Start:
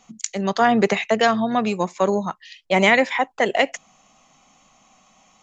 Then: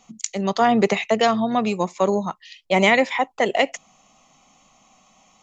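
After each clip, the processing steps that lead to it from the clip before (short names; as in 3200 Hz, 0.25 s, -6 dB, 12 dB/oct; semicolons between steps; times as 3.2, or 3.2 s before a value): bell 1600 Hz -8 dB 0.3 oct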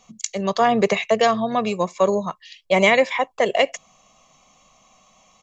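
comb 1.8 ms, depth 42%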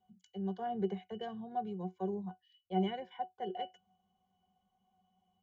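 octave resonator F#, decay 0.13 s; gain -7.5 dB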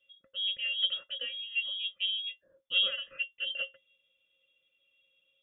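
inverted band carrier 3500 Hz; gain +4 dB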